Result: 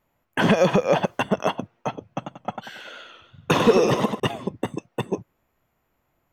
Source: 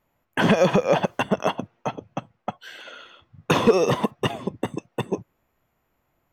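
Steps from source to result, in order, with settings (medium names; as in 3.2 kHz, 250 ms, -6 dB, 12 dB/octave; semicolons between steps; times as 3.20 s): 2.08–4.20 s: modulated delay 94 ms, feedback 41%, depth 107 cents, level -6 dB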